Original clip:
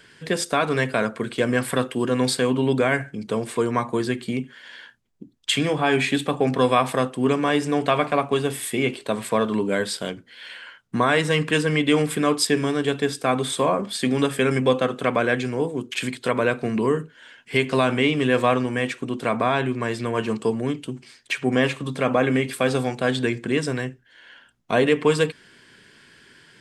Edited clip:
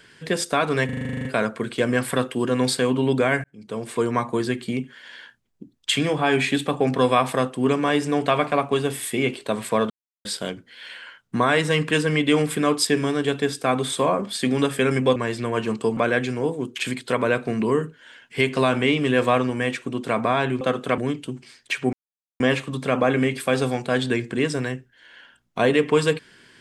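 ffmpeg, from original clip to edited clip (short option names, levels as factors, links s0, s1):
-filter_complex "[0:a]asplit=19[s0][s1][s2][s3][s4][s5][s6][s7][s8][s9][s10][s11][s12][s13][s14][s15][s16][s17][s18];[s0]atrim=end=0.892[s19];[s1]atrim=start=0.848:end=0.892[s20];[s2]atrim=start=0.848:end=0.892[s21];[s3]atrim=start=0.848:end=0.892[s22];[s4]atrim=start=0.848:end=0.892[s23];[s5]atrim=start=0.848:end=0.892[s24];[s6]atrim=start=0.848:end=0.892[s25];[s7]atrim=start=0.848:end=0.892[s26];[s8]atrim=start=0.848:end=0.892[s27];[s9]atrim=start=0.848:end=0.892[s28];[s10]atrim=start=0.848:end=3.04,asetpts=PTS-STARTPTS,afade=t=out:st=2.188:d=0.004:c=hsin[s29];[s11]atrim=start=3.04:end=9.5,asetpts=PTS-STARTPTS,afade=t=in:d=0.58,afade=t=out:st=6.456:d=0.004:c=hsin[s30];[s12]atrim=start=9.5:end=9.85,asetpts=PTS-STARTPTS,volume=0[s31];[s13]atrim=start=9.85:end=14.762,asetpts=PTS-STARTPTS,afade=t=in:d=0.004:c=hsin[s32];[s14]atrim=start=19.768:end=20.582[s33];[s15]atrim=start=15.128:end=19.772[s34];[s16]atrim=start=14.758:end=15.132[s35];[s17]atrim=start=20.578:end=21.53,asetpts=PTS-STARTPTS,afade=t=out:st=0.948:d=0.004:c=hsin,apad=pad_dur=0.47[s36];[s18]atrim=start=21.53,asetpts=PTS-STARTPTS,afade=t=in:d=0.004:c=hsin[s37];[s19][s20]acrossfade=d=0.004:c1=hsin:c2=hsin[s38];[s38][s21]acrossfade=d=0.004:c1=hsin:c2=hsin[s39];[s39][s22]acrossfade=d=0.004:c1=hsin:c2=hsin[s40];[s40][s23]acrossfade=d=0.004:c1=hsin:c2=hsin[s41];[s41][s24]acrossfade=d=0.004:c1=hsin:c2=hsin[s42];[s42][s25]acrossfade=d=0.004:c1=hsin:c2=hsin[s43];[s43][s26]acrossfade=d=0.004:c1=hsin:c2=hsin[s44];[s44][s27]acrossfade=d=0.004:c1=hsin:c2=hsin[s45];[s45][s28]acrossfade=d=0.004:c1=hsin:c2=hsin[s46];[s29][s30][s31][s32]concat=n=4:v=0:a=1[s47];[s46][s47]acrossfade=d=0.004:c1=hsin:c2=hsin[s48];[s48][s33]acrossfade=d=0.004:c1=hsin:c2=hsin[s49];[s49][s34]acrossfade=d=0.004:c1=hsin:c2=hsin[s50];[s50][s35]acrossfade=d=0.004:c1=hsin:c2=hsin[s51];[s36][s37]concat=n=2:v=0:a=1[s52];[s51][s52]acrossfade=d=0.004:c1=hsin:c2=hsin"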